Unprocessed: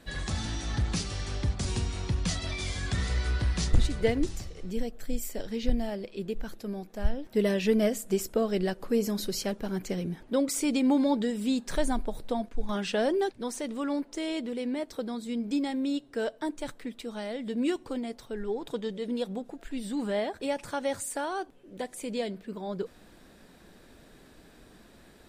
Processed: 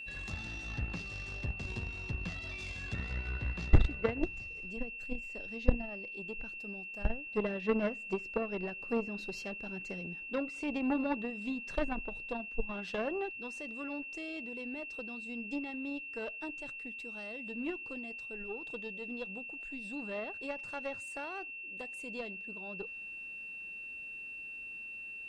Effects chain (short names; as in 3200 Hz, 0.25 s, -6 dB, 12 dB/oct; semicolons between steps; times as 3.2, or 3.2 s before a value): treble ducked by the level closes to 2300 Hz, closed at -23.5 dBFS; added harmonics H 2 -14 dB, 3 -12 dB, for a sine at -12.5 dBFS; whine 2700 Hz -42 dBFS